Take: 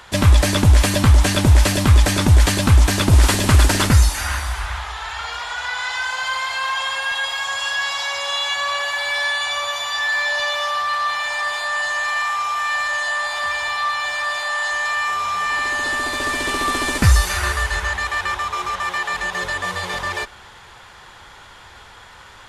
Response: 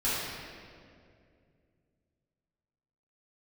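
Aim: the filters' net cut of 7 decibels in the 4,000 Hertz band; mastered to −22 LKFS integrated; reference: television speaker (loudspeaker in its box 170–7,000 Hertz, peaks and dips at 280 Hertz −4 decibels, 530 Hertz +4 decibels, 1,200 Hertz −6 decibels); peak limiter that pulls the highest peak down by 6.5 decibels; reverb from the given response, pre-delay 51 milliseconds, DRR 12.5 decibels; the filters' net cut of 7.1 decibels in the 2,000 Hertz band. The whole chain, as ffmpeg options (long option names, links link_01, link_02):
-filter_complex "[0:a]equalizer=frequency=2000:width_type=o:gain=-6.5,equalizer=frequency=4000:width_type=o:gain=-6.5,alimiter=limit=-10.5dB:level=0:latency=1,asplit=2[link_01][link_02];[1:a]atrim=start_sample=2205,adelay=51[link_03];[link_02][link_03]afir=irnorm=-1:irlink=0,volume=-23dB[link_04];[link_01][link_04]amix=inputs=2:normalize=0,highpass=frequency=170:width=0.5412,highpass=frequency=170:width=1.3066,equalizer=frequency=280:width_type=q:width=4:gain=-4,equalizer=frequency=530:width_type=q:width=4:gain=4,equalizer=frequency=1200:width_type=q:width=4:gain=-6,lowpass=frequency=7000:width=0.5412,lowpass=frequency=7000:width=1.3066,volume=5dB"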